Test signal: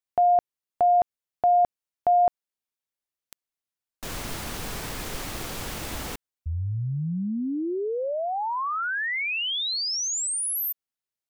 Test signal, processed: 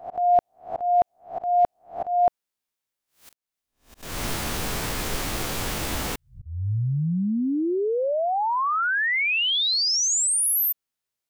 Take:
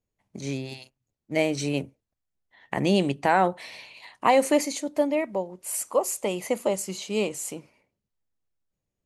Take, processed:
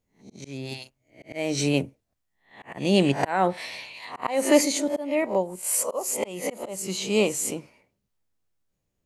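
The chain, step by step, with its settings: spectral swells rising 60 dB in 0.34 s; auto swell 0.297 s; gain +4 dB

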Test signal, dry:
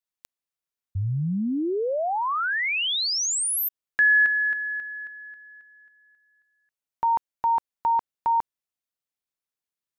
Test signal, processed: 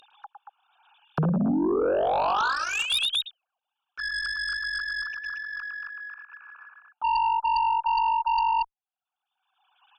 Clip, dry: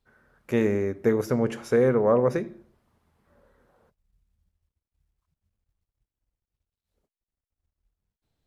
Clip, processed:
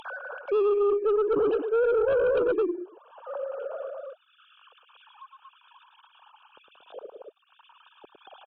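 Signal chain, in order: sine-wave speech; loudspeakers at several distances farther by 37 m -7 dB, 79 m -8 dB; in parallel at 0 dB: upward compressor, threshold -23 dBFS; on the sum: bell 460 Hz +5 dB 1.8 oct; reverse; compressor 8:1, threshold -21 dBFS; reverse; added harmonics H 2 -19 dB, 5 -11 dB, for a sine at -13 dBFS; Butterworth band-stop 2000 Hz, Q 2; gain -3.5 dB

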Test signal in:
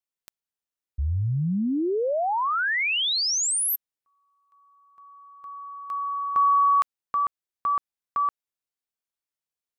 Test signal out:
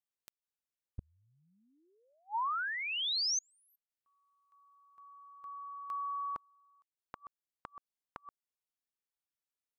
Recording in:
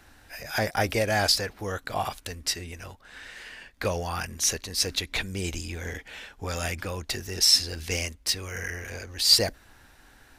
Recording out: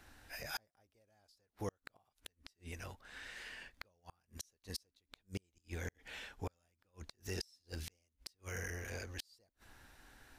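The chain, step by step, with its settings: dynamic EQ 2100 Hz, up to -7 dB, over -40 dBFS, Q 1.1; flipped gate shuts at -22 dBFS, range -40 dB; gain -6.5 dB

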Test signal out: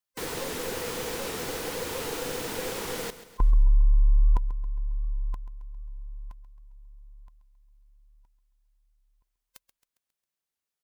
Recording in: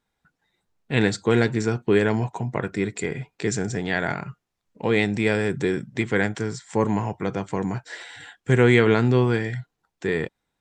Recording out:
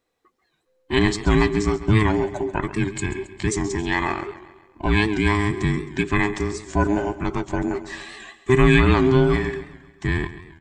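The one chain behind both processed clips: band inversion scrambler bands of 500 Hz; feedback echo 0.135 s, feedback 51%, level -14.5 dB; record warp 78 rpm, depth 100 cents; gain +2 dB

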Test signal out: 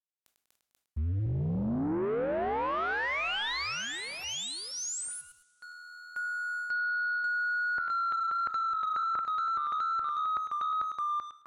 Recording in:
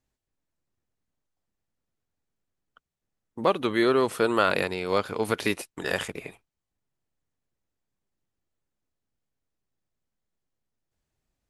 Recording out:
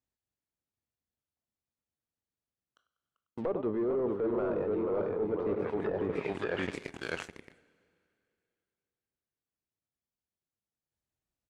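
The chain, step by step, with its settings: feedback echo 97 ms, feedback 40%, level -15 dB; echoes that change speed 0.227 s, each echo -1 st, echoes 2, each echo -6 dB; HPF 46 Hz 12 dB/oct; in parallel at -9 dB: soft clip -15.5 dBFS; on the sum: dynamic EQ 430 Hz, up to +5 dB, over -35 dBFS, Q 2.7; sample leveller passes 3; treble ducked by the level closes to 750 Hz, closed at -10.5 dBFS; two-slope reverb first 0.4 s, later 2.7 s, from -16 dB, DRR 18 dB; reverse; compressor 6:1, threshold -22 dBFS; reverse; ending taper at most 400 dB/s; gain -7.5 dB

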